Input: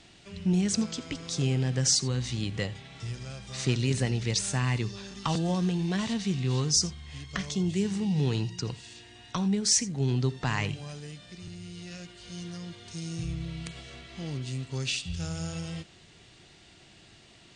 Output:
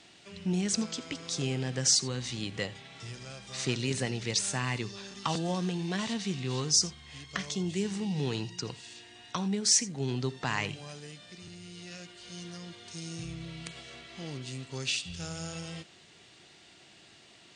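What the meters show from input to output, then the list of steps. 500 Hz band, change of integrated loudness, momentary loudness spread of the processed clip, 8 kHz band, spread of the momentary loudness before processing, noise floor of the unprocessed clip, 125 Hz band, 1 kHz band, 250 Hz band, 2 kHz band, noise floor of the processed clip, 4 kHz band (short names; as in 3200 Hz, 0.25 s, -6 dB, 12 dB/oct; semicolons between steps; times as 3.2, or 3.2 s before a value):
-1.5 dB, -2.0 dB, 19 LU, 0.0 dB, 18 LU, -55 dBFS, -7.0 dB, -0.5 dB, -4.5 dB, 0.0 dB, -57 dBFS, 0.0 dB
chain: HPF 270 Hz 6 dB/oct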